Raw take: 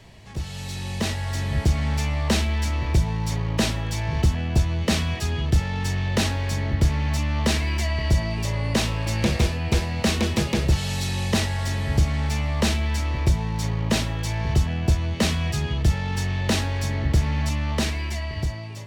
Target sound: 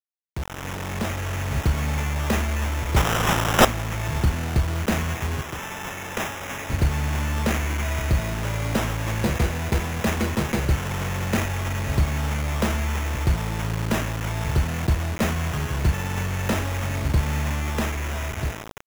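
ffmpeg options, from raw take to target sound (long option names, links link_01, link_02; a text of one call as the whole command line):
ffmpeg -i in.wav -filter_complex "[0:a]acrusher=bits=4:mix=0:aa=0.000001,asettb=1/sr,asplit=3[link_01][link_02][link_03];[link_01]atrim=end=2.964[link_04];[link_02]atrim=start=2.96:end=3.65,asetpts=PTS-STARTPTS,afade=type=in:duration=0.004:curve=qsin,afade=type=out:start_time=0.686:duration=0.004:curve=qsin,highshelf=frequency=2300:width_type=q:width=3:gain=11.5[link_05];[link_03]atrim=start=3.646[link_06];[link_04][link_05]acrossfade=duration=0.004:curve1=hsin:curve2=qsin[link_07];[link_07][link_06]acrossfade=duration=0.004:curve1=qsin:curve2=hsin,asettb=1/sr,asplit=3[link_08][link_09][link_10];[link_08]atrim=end=5.414[link_11];[link_09]atrim=start=5.41:end=6.7,asetpts=PTS-STARTPTS,afade=type=in:duration=0.004:curve=qsin,afade=type=out:start_time=1.286:duration=0.004:curve=qsin,highpass=frequency=630:poles=1[link_12];[link_10]atrim=start=6.696[link_13];[link_11][link_12]acrossfade=duration=0.004:curve1=hsin:curve2=qsin[link_14];[link_14][link_13]acrossfade=duration=0.004:curve1=qsin:curve2=hsin,acrusher=samples=10:mix=1:aa=0.000001,volume=-1.5dB" out.wav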